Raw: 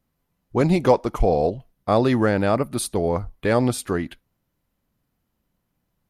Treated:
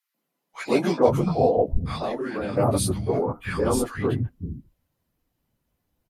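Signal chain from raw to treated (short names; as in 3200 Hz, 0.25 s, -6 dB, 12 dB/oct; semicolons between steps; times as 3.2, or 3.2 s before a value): phase scrambler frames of 50 ms; 0.66–1.33 doubler 12 ms -8.5 dB; three bands offset in time highs, mids, lows 0.14/0.53 s, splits 200/1300 Hz; 1.96–2.57 compressor 6:1, threshold -26 dBFS, peak gain reduction 11 dB; 3.21–3.82 thirty-one-band EQ 630 Hz -11 dB, 1250 Hz +4 dB, 2000 Hz -5 dB, 4000 Hz -10 dB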